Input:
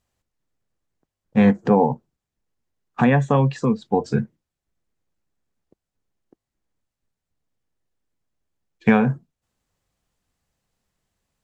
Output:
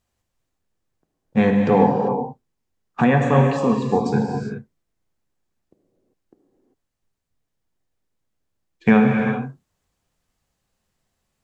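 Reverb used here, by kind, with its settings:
reverb whose tail is shaped and stops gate 420 ms flat, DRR 1.5 dB

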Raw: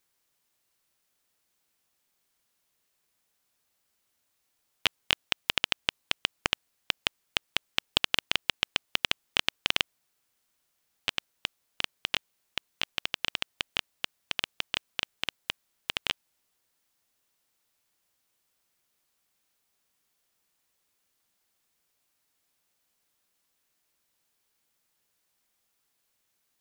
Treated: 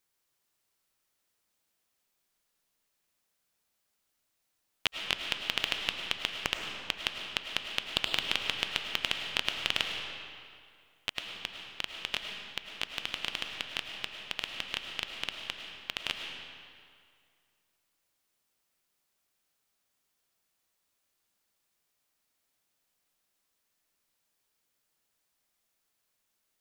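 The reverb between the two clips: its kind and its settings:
comb and all-pass reverb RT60 2.2 s, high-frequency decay 0.8×, pre-delay 65 ms, DRR 3 dB
level −4 dB

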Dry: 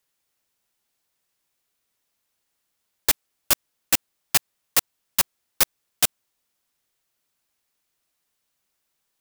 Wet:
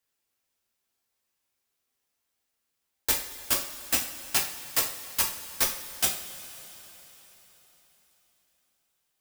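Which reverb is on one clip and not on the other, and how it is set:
coupled-rooms reverb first 0.38 s, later 4.3 s, from −18 dB, DRR −2.5 dB
level −8 dB

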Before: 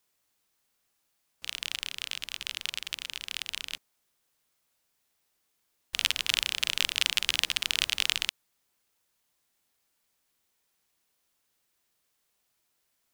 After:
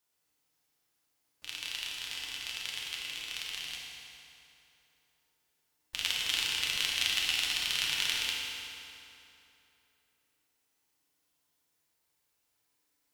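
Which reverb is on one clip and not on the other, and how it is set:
feedback delay network reverb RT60 3 s, high-frequency decay 0.75×, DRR −4 dB
level −7 dB

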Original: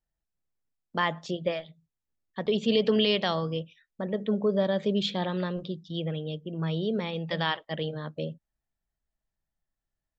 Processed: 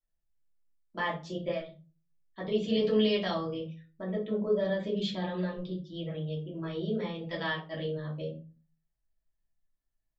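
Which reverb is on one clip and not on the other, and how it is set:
rectangular room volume 140 cubic metres, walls furnished, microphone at 2.9 metres
level −11.5 dB

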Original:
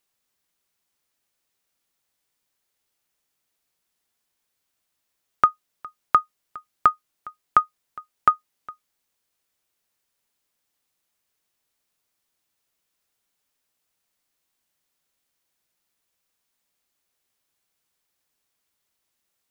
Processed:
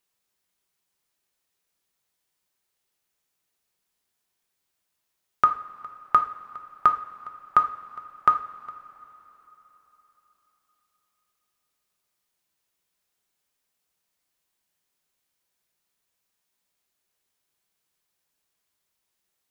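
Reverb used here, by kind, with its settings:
coupled-rooms reverb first 0.43 s, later 4 s, from −18 dB, DRR 5 dB
level −2.5 dB

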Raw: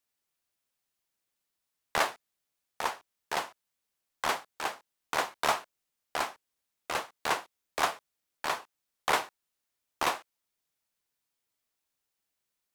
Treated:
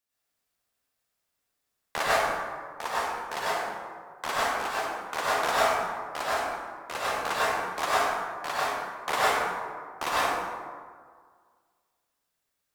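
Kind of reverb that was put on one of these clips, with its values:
dense smooth reverb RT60 1.8 s, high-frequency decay 0.45×, pre-delay 85 ms, DRR −8.5 dB
level −3.5 dB

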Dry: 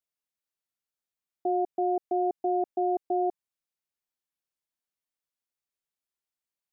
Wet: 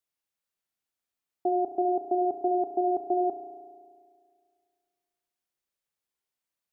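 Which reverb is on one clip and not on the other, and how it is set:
spring reverb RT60 2 s, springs 34 ms, chirp 60 ms, DRR 4.5 dB
level +2 dB

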